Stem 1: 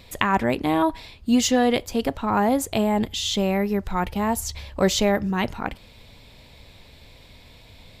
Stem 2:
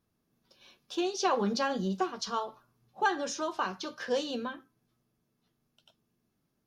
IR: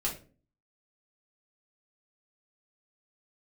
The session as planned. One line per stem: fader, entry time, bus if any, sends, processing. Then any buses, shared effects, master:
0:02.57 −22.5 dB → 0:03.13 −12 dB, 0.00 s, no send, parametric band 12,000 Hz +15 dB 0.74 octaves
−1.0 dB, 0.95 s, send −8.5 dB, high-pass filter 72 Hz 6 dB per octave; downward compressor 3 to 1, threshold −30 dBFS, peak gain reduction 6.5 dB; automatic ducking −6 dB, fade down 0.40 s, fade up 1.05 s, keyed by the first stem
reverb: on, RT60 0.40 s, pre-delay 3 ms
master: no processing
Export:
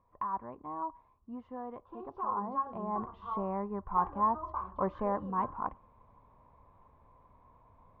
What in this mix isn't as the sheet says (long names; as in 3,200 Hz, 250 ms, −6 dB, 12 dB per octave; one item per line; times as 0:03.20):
stem 1 −22.5 dB → −12.5 dB
master: extra transistor ladder low-pass 1,100 Hz, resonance 85%